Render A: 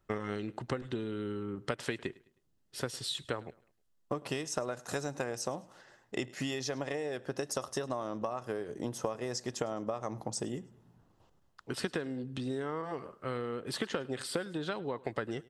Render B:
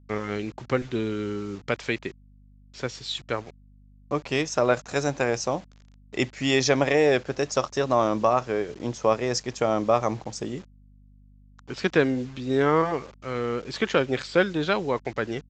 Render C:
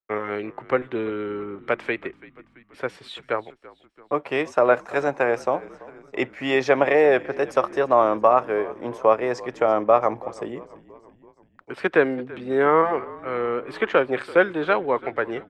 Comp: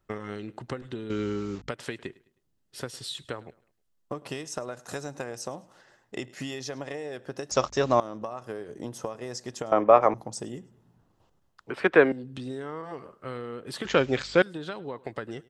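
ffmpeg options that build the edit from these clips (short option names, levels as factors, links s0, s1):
-filter_complex "[1:a]asplit=3[s0][s1][s2];[2:a]asplit=2[s3][s4];[0:a]asplit=6[s5][s6][s7][s8][s9][s10];[s5]atrim=end=1.102[s11];[s0]atrim=start=1.098:end=1.692[s12];[s6]atrim=start=1.688:end=7.512[s13];[s1]atrim=start=7.508:end=8.002[s14];[s7]atrim=start=7.998:end=9.722[s15];[s3]atrim=start=9.718:end=10.142[s16];[s8]atrim=start=10.138:end=11.702[s17];[s4]atrim=start=11.698:end=12.122[s18];[s9]atrim=start=12.118:end=13.852[s19];[s2]atrim=start=13.848:end=14.422[s20];[s10]atrim=start=14.418[s21];[s11][s12]acrossfade=d=0.004:c1=hsin:c2=hsin[s22];[s22][s13]acrossfade=d=0.004:c1=hsin:c2=hsin[s23];[s23][s14]acrossfade=d=0.004:c1=hsin:c2=hsin[s24];[s24][s15]acrossfade=d=0.004:c1=hsin:c2=hsin[s25];[s25][s16]acrossfade=d=0.004:c1=hsin:c2=hsin[s26];[s26][s17]acrossfade=d=0.004:c1=hsin:c2=hsin[s27];[s27][s18]acrossfade=d=0.004:c1=hsin:c2=hsin[s28];[s28][s19]acrossfade=d=0.004:c1=hsin:c2=hsin[s29];[s29][s20]acrossfade=d=0.004:c1=hsin:c2=hsin[s30];[s30][s21]acrossfade=d=0.004:c1=hsin:c2=hsin"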